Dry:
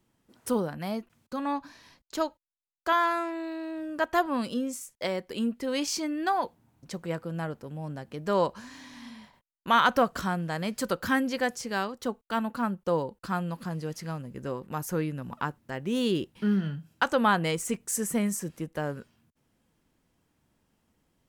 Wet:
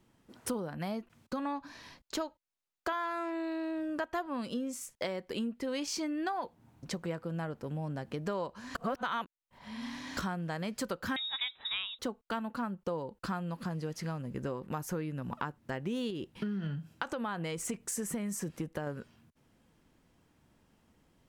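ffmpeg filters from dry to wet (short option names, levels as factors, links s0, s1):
-filter_complex "[0:a]asettb=1/sr,asplit=3[s0][s1][s2];[s0]atrim=end=11.164[s3];[s1]atrim=start=11.16:end=11.99,asetpts=PTS-STARTPTS,afade=t=in:d=0.004:c=qsin,afade=t=out:st=0.826:d=0.004:c=qsin,lowpass=f=3400:t=q:w=0.5098,lowpass=f=3400:t=q:w=0.6013,lowpass=f=3400:t=q:w=0.9,lowpass=f=3400:t=q:w=2.563,afreqshift=-4000[s4];[s2]atrim=start=11.986[s5];[s3][s4]acrossfade=d=0.004:c1=hsin:c2=qsin[s6];[s6][s5]acrossfade=d=0.004:c1=qsin:c2=hsin,asettb=1/sr,asplit=3[s7][s8][s9];[s7]atrim=end=16.104[s10];[s8]atrim=start=16.1:end=18.87,asetpts=PTS-STARTPTS,afade=t=in:d=0.004:c=qsin,afade=t=out:st=2.766:d=0.004:c=qsin,acompressor=threshold=0.0355:ratio=3:attack=3.2:release=140:knee=1:detection=peak[s11];[s9]atrim=start=18.866[s12];[s10][s11]acrossfade=d=0.004:c1=hsin:c2=qsin[s13];[s13][s12]acrossfade=d=0.004:c1=qsin:c2=hsin,asplit=3[s14][s15][s16];[s14]atrim=end=8.752[s17];[s15]atrim=start=8.748:end=10.172,asetpts=PTS-STARTPTS,areverse[s18];[s16]atrim=start=10.168[s19];[s17][s18]acrossfade=d=0.004:c1=hsin:c2=hsin[s20];[s20][s19]acrossfade=d=0.004:c1=hsin:c2=hsin,highshelf=f=7100:g=-6.5,acompressor=threshold=0.0126:ratio=5,volume=1.68"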